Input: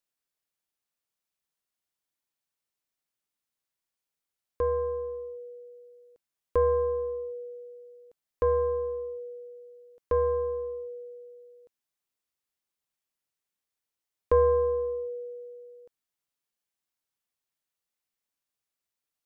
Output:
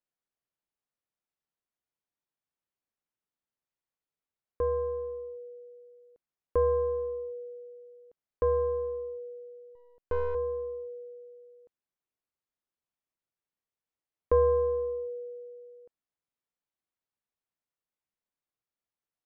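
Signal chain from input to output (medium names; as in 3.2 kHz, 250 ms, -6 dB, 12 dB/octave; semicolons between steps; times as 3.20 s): 9.75–10.35 s: partial rectifier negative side -12 dB; low-pass 1.3 kHz 6 dB/octave; trim -1 dB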